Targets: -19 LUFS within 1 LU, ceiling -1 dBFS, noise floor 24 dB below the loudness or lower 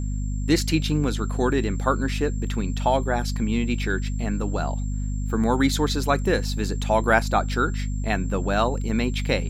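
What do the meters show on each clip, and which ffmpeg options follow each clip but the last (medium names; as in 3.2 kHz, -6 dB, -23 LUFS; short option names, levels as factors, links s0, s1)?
hum 50 Hz; highest harmonic 250 Hz; hum level -24 dBFS; steady tone 7.4 kHz; tone level -46 dBFS; loudness -24.0 LUFS; peak level -4.0 dBFS; loudness target -19.0 LUFS
-> -af "bandreject=f=50:t=h:w=6,bandreject=f=100:t=h:w=6,bandreject=f=150:t=h:w=6,bandreject=f=200:t=h:w=6,bandreject=f=250:t=h:w=6"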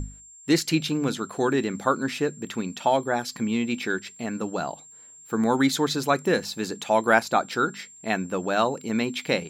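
hum not found; steady tone 7.4 kHz; tone level -46 dBFS
-> -af "bandreject=f=7400:w=30"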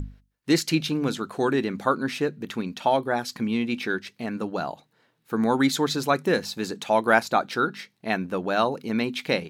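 steady tone not found; loudness -25.5 LUFS; peak level -4.5 dBFS; loudness target -19.0 LUFS
-> -af "volume=2.11,alimiter=limit=0.891:level=0:latency=1"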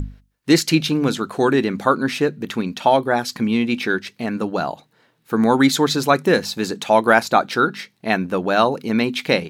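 loudness -19.0 LUFS; peak level -1.0 dBFS; noise floor -63 dBFS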